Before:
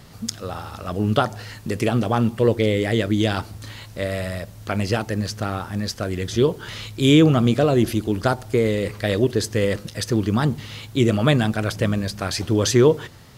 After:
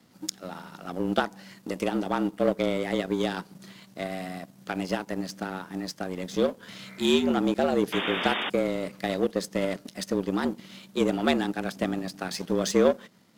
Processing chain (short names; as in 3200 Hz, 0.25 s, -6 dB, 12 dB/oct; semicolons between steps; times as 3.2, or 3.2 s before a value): spectral repair 6.83–7.25, 310–2300 Hz before; in parallel at -2.5 dB: compressor, threshold -25 dBFS, peak gain reduction 14 dB; on the sum: frequency shift +87 Hz; power-law curve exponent 1.4; painted sound noise, 7.92–8.5, 210–3700 Hz -25 dBFS; gain -5 dB